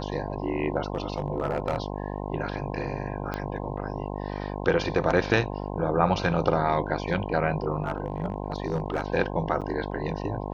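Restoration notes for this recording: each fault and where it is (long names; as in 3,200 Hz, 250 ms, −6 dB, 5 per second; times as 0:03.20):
mains buzz 50 Hz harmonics 21 −33 dBFS
0:00.95–0:01.82: clipping −19.5 dBFS
0:03.34: click −17 dBFS
0:07.82–0:09.08: clipping −20.5 dBFS
0:09.61–0:09.62: drop-out 7.7 ms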